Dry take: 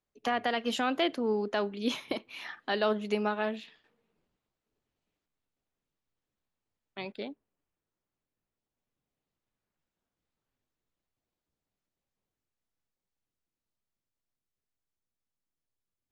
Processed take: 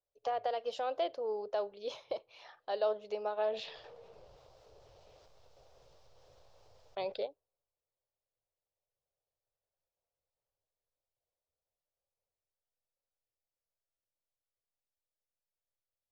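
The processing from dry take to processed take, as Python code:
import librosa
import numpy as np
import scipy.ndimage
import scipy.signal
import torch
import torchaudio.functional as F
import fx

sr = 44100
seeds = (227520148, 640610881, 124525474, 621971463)

y = fx.curve_eq(x, sr, hz=(120.0, 240.0, 530.0, 1900.0, 5300.0, 9500.0), db=(0, -21, 10, -10, 1, -19))
y = fx.env_flatten(y, sr, amount_pct=50, at=(3.37, 7.25), fade=0.02)
y = F.gain(torch.from_numpy(y), -8.0).numpy()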